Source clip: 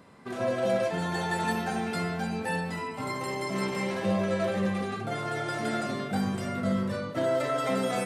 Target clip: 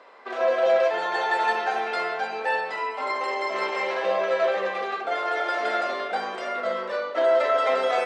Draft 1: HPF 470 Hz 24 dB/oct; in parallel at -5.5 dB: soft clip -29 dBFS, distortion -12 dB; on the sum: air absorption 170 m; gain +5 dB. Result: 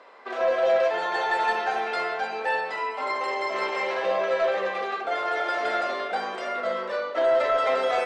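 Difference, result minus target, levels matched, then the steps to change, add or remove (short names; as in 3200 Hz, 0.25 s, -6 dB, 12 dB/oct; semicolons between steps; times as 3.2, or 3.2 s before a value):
soft clip: distortion +14 dB
change: soft clip -18.5 dBFS, distortion -26 dB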